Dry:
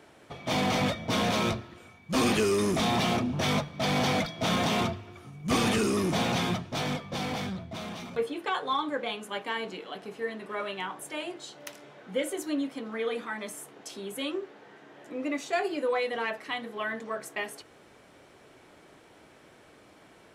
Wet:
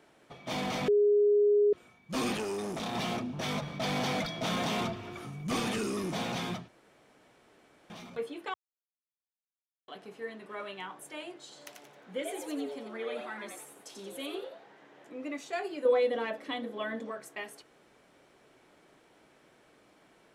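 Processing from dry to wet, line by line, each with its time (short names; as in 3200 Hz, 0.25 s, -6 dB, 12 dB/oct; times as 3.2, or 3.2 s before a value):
0.88–1.73 bleep 413 Hz -14 dBFS
2.37–2.95 core saturation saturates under 640 Hz
3.62–5.6 fast leveller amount 50%
6.68–7.9 room tone
8.54–9.88 mute
11.42–15.08 frequency-shifting echo 90 ms, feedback 36%, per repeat +140 Hz, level -5 dB
15.85–17.11 small resonant body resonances 280/520/3400 Hz, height 13 dB, ringing for 30 ms
whole clip: bell 90 Hz -11.5 dB 0.42 oct; gain -6.5 dB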